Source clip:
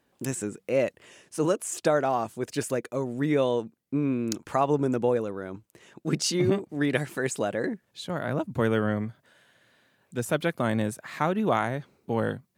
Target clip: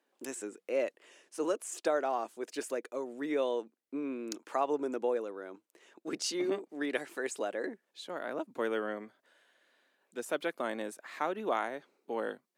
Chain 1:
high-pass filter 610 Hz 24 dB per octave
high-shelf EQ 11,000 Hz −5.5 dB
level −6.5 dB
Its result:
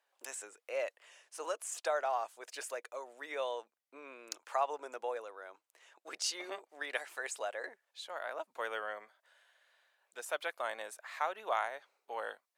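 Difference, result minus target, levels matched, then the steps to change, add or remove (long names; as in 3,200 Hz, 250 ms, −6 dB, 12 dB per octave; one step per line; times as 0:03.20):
250 Hz band −17.0 dB
change: high-pass filter 290 Hz 24 dB per octave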